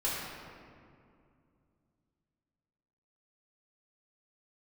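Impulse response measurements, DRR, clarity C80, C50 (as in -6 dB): -8.5 dB, 0.5 dB, -1.5 dB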